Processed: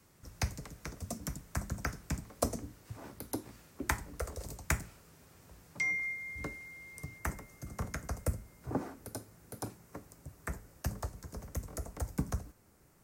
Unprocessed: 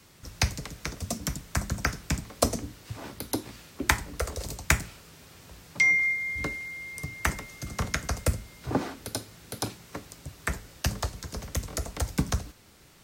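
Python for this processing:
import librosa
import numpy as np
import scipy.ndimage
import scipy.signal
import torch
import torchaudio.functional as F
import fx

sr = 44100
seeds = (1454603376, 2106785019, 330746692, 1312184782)

y = fx.peak_eq(x, sr, hz=3500.0, db=fx.steps((0.0, -8.5), (7.18, -14.5)), octaves=1.4)
y = y * librosa.db_to_amplitude(-7.0)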